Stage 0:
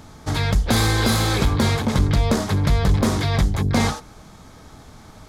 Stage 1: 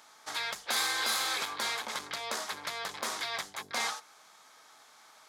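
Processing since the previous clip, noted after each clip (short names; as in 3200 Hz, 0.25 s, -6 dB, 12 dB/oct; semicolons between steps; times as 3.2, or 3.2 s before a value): HPF 990 Hz 12 dB/oct; gain -6 dB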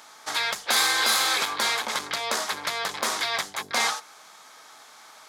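low shelf 65 Hz -6.5 dB; gain +8.5 dB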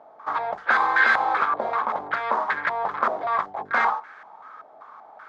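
stepped low-pass 5.2 Hz 660–1700 Hz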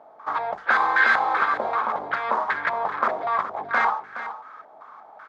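echo 0.419 s -12 dB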